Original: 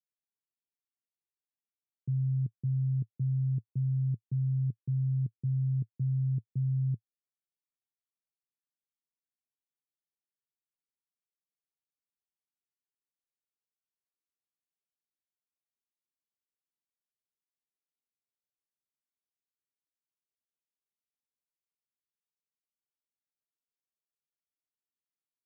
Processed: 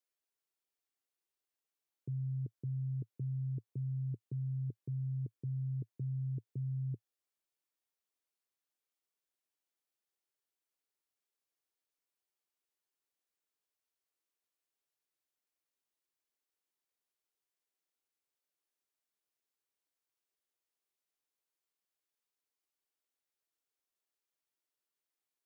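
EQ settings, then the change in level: resonant low shelf 250 Hz -9 dB, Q 1.5; +3.0 dB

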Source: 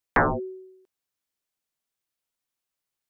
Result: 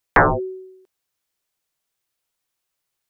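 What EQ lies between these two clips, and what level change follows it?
bell 240 Hz -8 dB 0.35 oct; +7.0 dB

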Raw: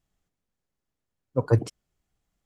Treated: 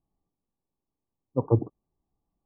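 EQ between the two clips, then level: rippled Chebyshev low-pass 1200 Hz, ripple 6 dB; +2.5 dB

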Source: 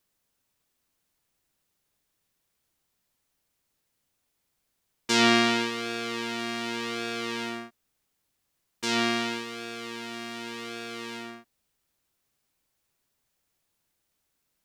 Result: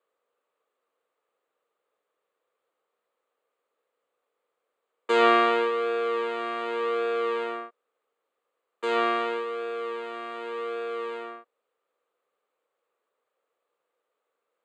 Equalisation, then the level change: running mean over 8 samples; resonant high-pass 480 Hz, resonance Q 5.9; bell 1200 Hz +11 dB 0.32 oct; -1.5 dB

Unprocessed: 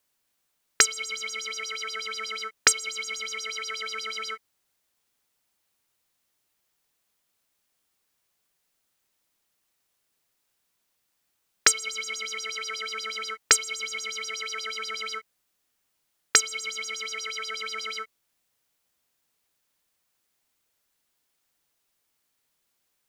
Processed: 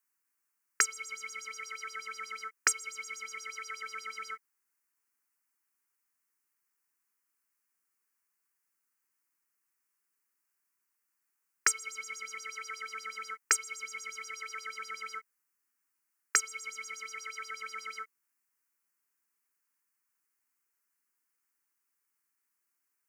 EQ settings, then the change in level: HPF 310 Hz 12 dB/oct; fixed phaser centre 1500 Hz, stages 4; -4.5 dB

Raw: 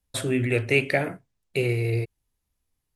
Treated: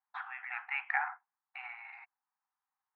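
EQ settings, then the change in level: brick-wall FIR high-pass 730 Hz; LPF 1500 Hz 24 dB/oct; +3.5 dB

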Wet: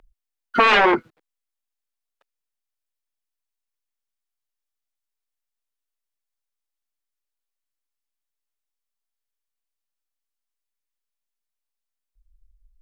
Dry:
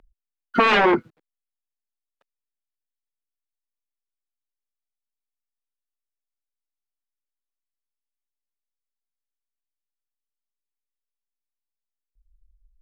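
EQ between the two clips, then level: bell 160 Hz -8 dB 2.3 oct; +3.0 dB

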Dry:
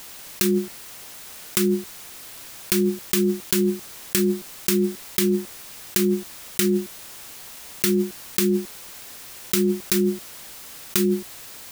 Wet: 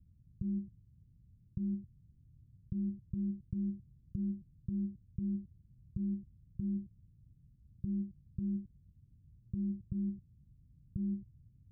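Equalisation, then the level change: HPF 66 Hz 6 dB/oct; inverse Chebyshev low-pass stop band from 760 Hz, stop band 80 dB; +5.0 dB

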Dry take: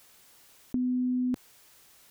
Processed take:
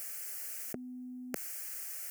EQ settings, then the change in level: HPF 210 Hz 12 dB/oct; high shelf 2100 Hz +11.5 dB; fixed phaser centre 990 Hz, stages 6; +6.5 dB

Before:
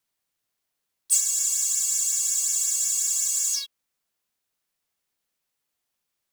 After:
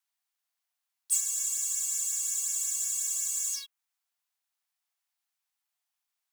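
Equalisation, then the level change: steep high-pass 670 Hz 72 dB/oct; dynamic EQ 4700 Hz, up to -6 dB, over -42 dBFS, Q 1.7; -5.0 dB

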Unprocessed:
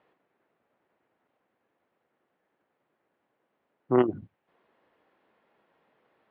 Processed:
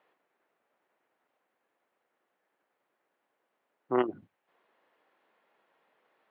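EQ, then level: HPF 590 Hz 6 dB/oct; 0.0 dB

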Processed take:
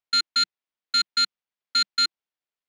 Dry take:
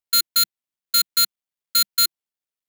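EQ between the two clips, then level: Gaussian blur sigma 1.7 samples; low shelf 230 Hz -8.5 dB; +2.5 dB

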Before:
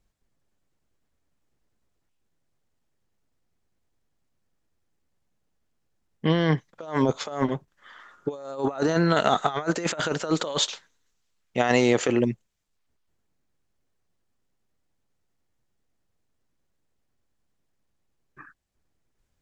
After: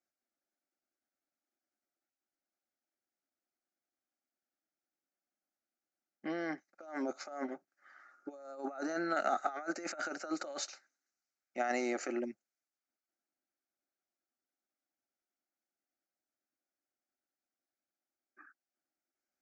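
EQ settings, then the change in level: speaker cabinet 440–6200 Hz, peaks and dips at 640 Hz -5 dB, 950 Hz -5 dB, 1800 Hz -8 dB, 2700 Hz -6 dB; fixed phaser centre 680 Hz, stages 8; -4.5 dB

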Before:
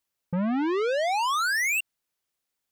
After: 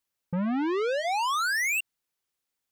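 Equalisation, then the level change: notch 640 Hz, Q 12; -1.5 dB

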